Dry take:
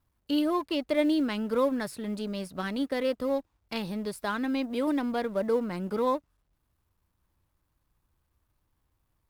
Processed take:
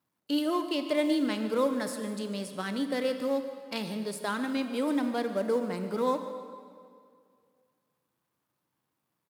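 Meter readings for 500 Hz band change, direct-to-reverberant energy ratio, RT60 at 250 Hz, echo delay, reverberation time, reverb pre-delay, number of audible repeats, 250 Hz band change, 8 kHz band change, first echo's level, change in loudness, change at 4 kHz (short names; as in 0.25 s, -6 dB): -1.0 dB, 7.5 dB, 2.2 s, 0.147 s, 2.2 s, 24 ms, 1, -1.0 dB, +4.5 dB, -16.5 dB, -1.0 dB, +1.0 dB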